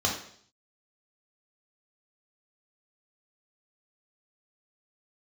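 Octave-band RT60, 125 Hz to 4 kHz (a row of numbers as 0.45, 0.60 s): 0.70, 0.65, 0.60, 0.55, 0.55, 0.65 s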